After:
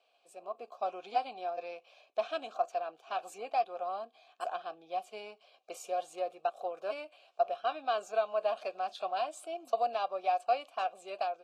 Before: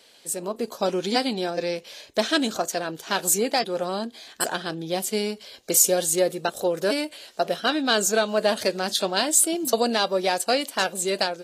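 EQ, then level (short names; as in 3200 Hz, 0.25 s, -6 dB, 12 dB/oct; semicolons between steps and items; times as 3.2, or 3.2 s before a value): dynamic EQ 1300 Hz, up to +4 dB, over -35 dBFS, Q 0.75; vowel filter a; low shelf 170 Hz -11.5 dB; -2.5 dB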